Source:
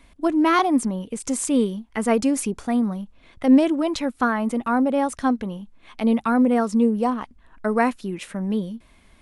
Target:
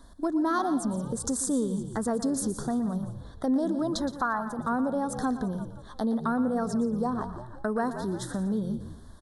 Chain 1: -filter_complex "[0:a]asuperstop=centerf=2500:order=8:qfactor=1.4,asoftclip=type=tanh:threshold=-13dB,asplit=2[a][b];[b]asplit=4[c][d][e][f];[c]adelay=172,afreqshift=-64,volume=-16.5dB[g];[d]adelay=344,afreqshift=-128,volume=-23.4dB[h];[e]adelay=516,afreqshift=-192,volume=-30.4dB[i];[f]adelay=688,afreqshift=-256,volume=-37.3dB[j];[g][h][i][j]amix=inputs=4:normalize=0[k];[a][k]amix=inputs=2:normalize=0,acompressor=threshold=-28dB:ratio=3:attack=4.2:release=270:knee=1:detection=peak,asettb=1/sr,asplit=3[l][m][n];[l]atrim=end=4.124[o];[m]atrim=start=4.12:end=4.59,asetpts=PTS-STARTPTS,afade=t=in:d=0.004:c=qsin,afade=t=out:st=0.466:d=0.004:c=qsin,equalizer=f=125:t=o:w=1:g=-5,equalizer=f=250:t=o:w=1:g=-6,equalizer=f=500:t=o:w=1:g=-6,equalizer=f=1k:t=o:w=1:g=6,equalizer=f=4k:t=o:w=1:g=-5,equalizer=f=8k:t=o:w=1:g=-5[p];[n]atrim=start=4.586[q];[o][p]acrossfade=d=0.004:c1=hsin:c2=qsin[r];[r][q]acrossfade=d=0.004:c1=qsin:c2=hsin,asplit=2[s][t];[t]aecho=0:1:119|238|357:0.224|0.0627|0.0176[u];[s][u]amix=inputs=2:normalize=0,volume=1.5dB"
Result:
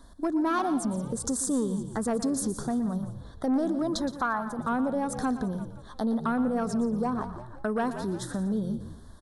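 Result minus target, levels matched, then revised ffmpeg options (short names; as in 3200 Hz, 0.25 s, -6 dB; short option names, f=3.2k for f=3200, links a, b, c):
soft clip: distortion +17 dB
-filter_complex "[0:a]asuperstop=centerf=2500:order=8:qfactor=1.4,asoftclip=type=tanh:threshold=-2dB,asplit=2[a][b];[b]asplit=4[c][d][e][f];[c]adelay=172,afreqshift=-64,volume=-16.5dB[g];[d]adelay=344,afreqshift=-128,volume=-23.4dB[h];[e]adelay=516,afreqshift=-192,volume=-30.4dB[i];[f]adelay=688,afreqshift=-256,volume=-37.3dB[j];[g][h][i][j]amix=inputs=4:normalize=0[k];[a][k]amix=inputs=2:normalize=0,acompressor=threshold=-28dB:ratio=3:attack=4.2:release=270:knee=1:detection=peak,asettb=1/sr,asplit=3[l][m][n];[l]atrim=end=4.124[o];[m]atrim=start=4.12:end=4.59,asetpts=PTS-STARTPTS,afade=t=in:d=0.004:c=qsin,afade=t=out:st=0.466:d=0.004:c=qsin,equalizer=f=125:t=o:w=1:g=-5,equalizer=f=250:t=o:w=1:g=-6,equalizer=f=500:t=o:w=1:g=-6,equalizer=f=1k:t=o:w=1:g=6,equalizer=f=4k:t=o:w=1:g=-5,equalizer=f=8k:t=o:w=1:g=-5[p];[n]atrim=start=4.586[q];[o][p]acrossfade=d=0.004:c1=hsin:c2=qsin[r];[r][q]acrossfade=d=0.004:c1=qsin:c2=hsin,asplit=2[s][t];[t]aecho=0:1:119|238|357:0.224|0.0627|0.0176[u];[s][u]amix=inputs=2:normalize=0,volume=1.5dB"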